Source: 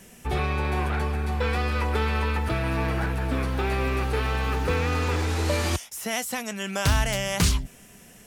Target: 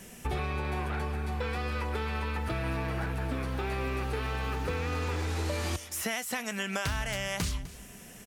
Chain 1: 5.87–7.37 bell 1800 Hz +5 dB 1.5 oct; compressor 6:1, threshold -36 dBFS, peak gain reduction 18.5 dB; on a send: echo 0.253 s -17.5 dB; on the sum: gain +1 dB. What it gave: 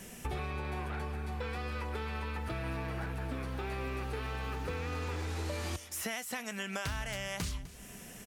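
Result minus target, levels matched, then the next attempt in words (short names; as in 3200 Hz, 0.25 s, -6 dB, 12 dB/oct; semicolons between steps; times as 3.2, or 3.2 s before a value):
compressor: peak gain reduction +5 dB
5.87–7.37 bell 1800 Hz +5 dB 1.5 oct; compressor 6:1, threshold -30 dBFS, peak gain reduction 13.5 dB; on a send: echo 0.253 s -17.5 dB; on the sum: gain +1 dB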